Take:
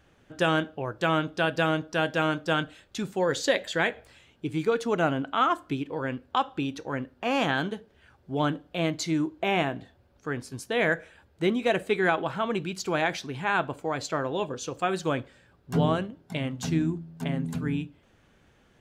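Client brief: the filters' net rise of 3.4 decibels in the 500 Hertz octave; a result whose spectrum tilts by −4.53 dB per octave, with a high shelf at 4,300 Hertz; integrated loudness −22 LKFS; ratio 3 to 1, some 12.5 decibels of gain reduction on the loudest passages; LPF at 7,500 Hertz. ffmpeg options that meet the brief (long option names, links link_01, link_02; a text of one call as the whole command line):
ffmpeg -i in.wav -af "lowpass=7500,equalizer=frequency=500:width_type=o:gain=4,highshelf=frequency=4300:gain=8,acompressor=threshold=-33dB:ratio=3,volume=13dB" out.wav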